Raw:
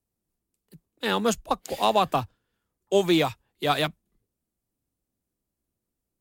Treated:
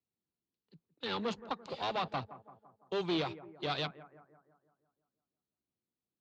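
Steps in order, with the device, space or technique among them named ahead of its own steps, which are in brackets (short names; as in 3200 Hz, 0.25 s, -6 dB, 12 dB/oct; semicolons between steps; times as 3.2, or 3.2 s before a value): analogue delay pedal into a guitar amplifier (analogue delay 0.169 s, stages 2048, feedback 53%, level -18 dB; tube stage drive 23 dB, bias 0.7; speaker cabinet 110–4500 Hz, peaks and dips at 640 Hz -3 dB, 1800 Hz -4 dB, 4200 Hz +6 dB); gain -5 dB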